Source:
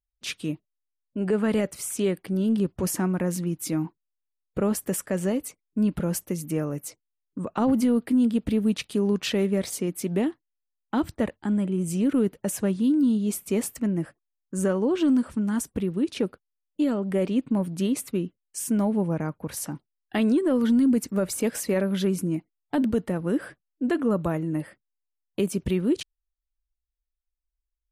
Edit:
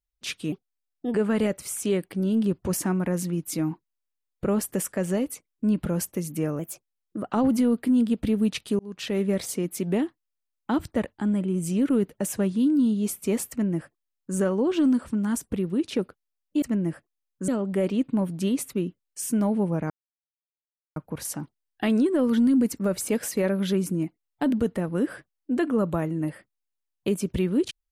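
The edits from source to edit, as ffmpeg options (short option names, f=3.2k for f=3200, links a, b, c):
-filter_complex "[0:a]asplit=9[a][b][c][d][e][f][g][h][i];[a]atrim=end=0.524[j];[b]atrim=start=0.52:end=1.28,asetpts=PTS-STARTPTS,asetrate=53802,aresample=44100,atrim=end_sample=27472,asetpts=PTS-STARTPTS[k];[c]atrim=start=1.276:end=6.734[l];[d]atrim=start=6.73:end=7.56,asetpts=PTS-STARTPTS,asetrate=50274,aresample=44100[m];[e]atrim=start=7.556:end=9.03,asetpts=PTS-STARTPTS,afade=t=out:st=1.47:d=0.004:c=hsin[n];[f]atrim=start=9.03:end=16.862,asetpts=PTS-STARTPTS,afade=t=in:d=0.47[o];[g]atrim=start=13.738:end=14.602[p];[h]atrim=start=16.858:end=19.28,asetpts=PTS-STARTPTS,afade=t=out:st=2.418:d=0.004:c=hsin,apad=pad_dur=1.06[q];[i]atrim=start=19.28,asetpts=PTS-STARTPTS,afade=t=in:d=0.004:c=hsin[r];[j][k]acrossfade=d=0.004:c1=hsin:c2=hsin[s];[s][l]acrossfade=d=0.004:c1=hsin:c2=hsin[t];[t][m]acrossfade=d=0.004:c1=hsin:c2=hsin[u];[n][o]concat=n=2:v=0:a=1[v];[u][v]acrossfade=d=0.004:c1=hsin:c2=hsin[w];[w][p]acrossfade=d=0.004:c1=hsin:c2=hsin[x];[q][r]concat=n=2:v=0:a=1[y];[x][y]acrossfade=d=0.004:c1=hsin:c2=hsin"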